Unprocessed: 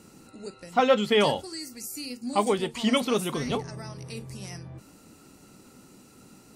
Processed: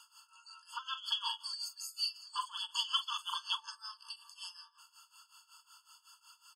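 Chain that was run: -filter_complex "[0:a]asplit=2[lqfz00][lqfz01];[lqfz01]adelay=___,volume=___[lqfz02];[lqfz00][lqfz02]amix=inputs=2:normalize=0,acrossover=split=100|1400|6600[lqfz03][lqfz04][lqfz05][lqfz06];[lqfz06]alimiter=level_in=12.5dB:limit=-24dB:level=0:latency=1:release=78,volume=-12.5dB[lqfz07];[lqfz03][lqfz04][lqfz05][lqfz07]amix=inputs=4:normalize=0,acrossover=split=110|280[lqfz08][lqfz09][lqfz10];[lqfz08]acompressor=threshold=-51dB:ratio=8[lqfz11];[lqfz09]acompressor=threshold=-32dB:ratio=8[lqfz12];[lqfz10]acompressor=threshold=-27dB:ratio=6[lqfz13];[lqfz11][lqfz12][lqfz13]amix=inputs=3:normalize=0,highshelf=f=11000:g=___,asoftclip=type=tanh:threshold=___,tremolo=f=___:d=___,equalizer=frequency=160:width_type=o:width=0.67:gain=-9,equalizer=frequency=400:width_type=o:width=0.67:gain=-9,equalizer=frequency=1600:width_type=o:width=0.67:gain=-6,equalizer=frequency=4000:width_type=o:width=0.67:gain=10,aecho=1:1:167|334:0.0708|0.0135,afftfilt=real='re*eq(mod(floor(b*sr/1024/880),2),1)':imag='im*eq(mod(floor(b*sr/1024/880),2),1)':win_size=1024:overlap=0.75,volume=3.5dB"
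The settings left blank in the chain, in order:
44, -10.5dB, -9, -21.5dB, 5.4, 0.86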